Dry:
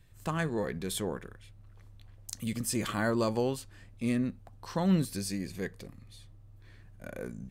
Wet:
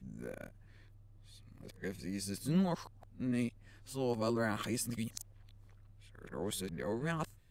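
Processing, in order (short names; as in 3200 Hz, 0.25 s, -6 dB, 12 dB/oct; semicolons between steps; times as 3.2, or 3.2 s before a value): whole clip reversed; gain -5 dB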